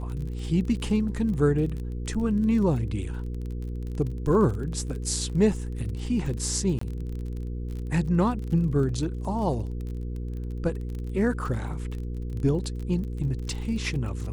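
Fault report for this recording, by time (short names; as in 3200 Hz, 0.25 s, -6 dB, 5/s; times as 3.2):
crackle 31/s -34 dBFS
hum 60 Hz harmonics 8 -32 dBFS
6.79–6.81 gap 24 ms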